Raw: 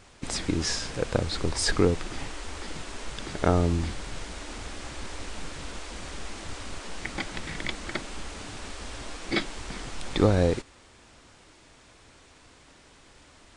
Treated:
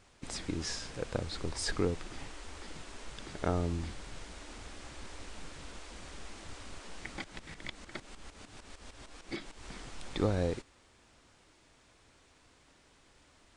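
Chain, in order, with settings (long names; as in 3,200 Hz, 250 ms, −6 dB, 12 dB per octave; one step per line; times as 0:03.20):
0:07.24–0:09.64: shaped tremolo saw up 6.6 Hz, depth 75%
level −9 dB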